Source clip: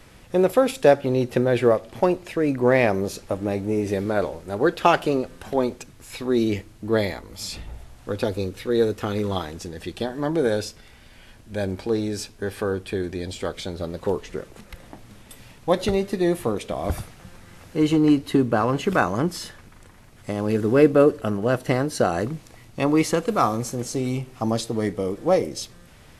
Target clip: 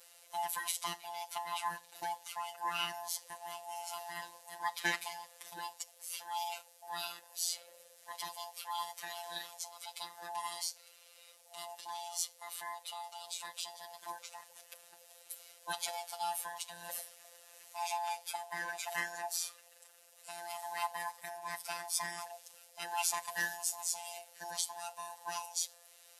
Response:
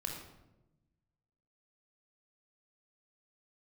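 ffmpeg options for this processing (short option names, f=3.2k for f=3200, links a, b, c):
-af "afftfilt=real='real(if(lt(b,1008),b+24*(1-2*mod(floor(b/24),2)),b),0)':imag='imag(if(lt(b,1008),b+24*(1-2*mod(floor(b/24),2)),b),0)':win_size=2048:overlap=0.75,afftfilt=real='hypot(re,im)*cos(PI*b)':imag='0':win_size=1024:overlap=0.75,aderivative,volume=2.5dB"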